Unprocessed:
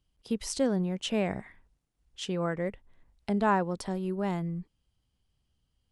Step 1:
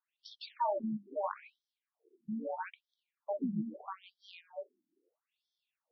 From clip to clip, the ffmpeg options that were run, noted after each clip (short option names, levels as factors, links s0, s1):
-af "bandreject=f=50:t=h:w=6,bandreject=f=100:t=h:w=6,bandreject=f=150:t=h:w=6,bandreject=f=200:t=h:w=6,bandreject=f=250:t=h:w=6,bandreject=f=300:t=h:w=6,bandreject=f=350:t=h:w=6,bandreject=f=400:t=h:w=6,bandreject=f=450:t=h:w=6,bandreject=f=500:t=h:w=6,aeval=exprs='val(0)*sin(2*PI*400*n/s)':c=same,afftfilt=real='re*between(b*sr/1024,230*pow(4500/230,0.5+0.5*sin(2*PI*0.77*pts/sr))/1.41,230*pow(4500/230,0.5+0.5*sin(2*PI*0.77*pts/sr))*1.41)':imag='im*between(b*sr/1024,230*pow(4500/230,0.5+0.5*sin(2*PI*0.77*pts/sr))/1.41,230*pow(4500/230,0.5+0.5*sin(2*PI*0.77*pts/sr))*1.41)':win_size=1024:overlap=0.75,volume=1.5"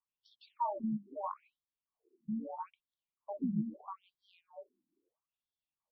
-af "firequalizer=gain_entry='entry(130,0);entry(490,-13);entry(1100,-3);entry(1600,-28);entry(2700,-16);entry(6200,-23)':delay=0.05:min_phase=1,volume=1.68"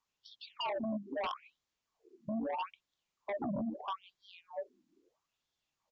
-af "acompressor=threshold=0.0112:ratio=2.5,aresample=16000,aeval=exprs='0.0266*sin(PI/2*2.51*val(0)/0.0266)':c=same,aresample=44100,volume=0.891"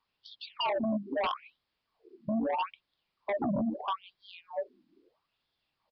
-af "aresample=11025,aresample=44100,volume=2"